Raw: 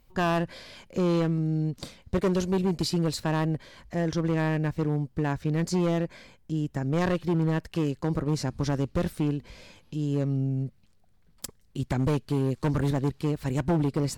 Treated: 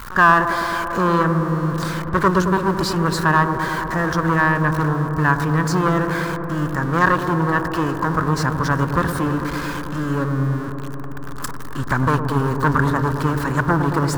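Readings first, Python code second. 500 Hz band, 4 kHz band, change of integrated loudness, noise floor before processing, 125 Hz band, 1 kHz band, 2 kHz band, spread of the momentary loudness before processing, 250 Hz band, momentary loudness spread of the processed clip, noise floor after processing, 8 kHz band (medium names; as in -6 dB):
+6.5 dB, +6.5 dB, +8.5 dB, -60 dBFS, +6.5 dB, +17.5 dB, +18.0 dB, 10 LU, +6.0 dB, 8 LU, -27 dBFS, +7.0 dB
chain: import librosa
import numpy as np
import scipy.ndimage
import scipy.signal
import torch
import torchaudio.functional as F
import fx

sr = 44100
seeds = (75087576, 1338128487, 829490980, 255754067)

y = x + 0.5 * 10.0 ** (-33.5 / 20.0) * np.sign(x)
y = fx.band_shelf(y, sr, hz=1300.0, db=15.5, octaves=1.1)
y = fx.echo_wet_lowpass(y, sr, ms=110, feedback_pct=85, hz=1000.0, wet_db=-7.5)
y = y * 10.0 ** (3.0 / 20.0)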